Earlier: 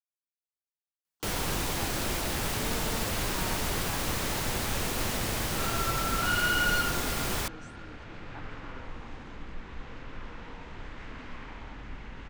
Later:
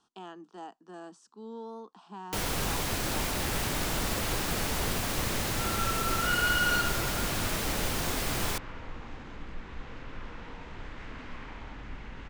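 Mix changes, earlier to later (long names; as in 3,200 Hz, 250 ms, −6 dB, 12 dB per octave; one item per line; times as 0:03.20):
speech: entry −1.20 s
first sound: entry +1.10 s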